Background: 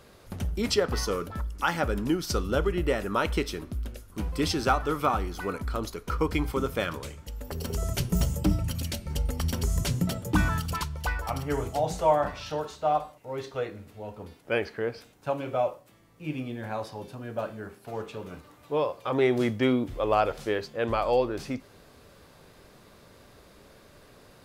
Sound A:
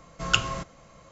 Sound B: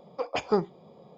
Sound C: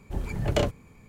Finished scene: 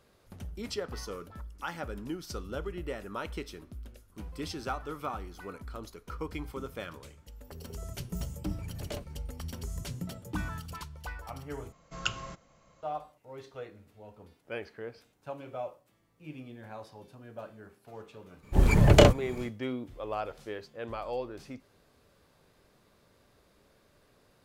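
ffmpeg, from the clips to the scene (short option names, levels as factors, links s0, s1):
-filter_complex "[3:a]asplit=2[s0][s1];[0:a]volume=0.282[s2];[s1]dynaudnorm=f=100:g=3:m=5.01[s3];[s2]asplit=2[s4][s5];[s4]atrim=end=11.724[s6];[1:a]atrim=end=1.11,asetpts=PTS-STARTPTS,volume=0.316[s7];[s5]atrim=start=12.826[s8];[s0]atrim=end=1.08,asetpts=PTS-STARTPTS,volume=0.168,afade=t=in:d=0.004:c=hsin,afade=t=out:st=1.076:d=0.004:c=hsin,adelay=367794S[s9];[s3]atrim=end=1.08,asetpts=PTS-STARTPTS,volume=0.794,afade=t=in:d=0.02,afade=t=out:st=1.06:d=0.02,adelay=18420[s10];[s6][s7]acrossfade=d=0.004:c1=hsin:c2=hsin[s11];[s11][s8]acrossfade=d=0.004:c1=hsin:c2=hsin[s12];[s12][s9][s10]amix=inputs=3:normalize=0"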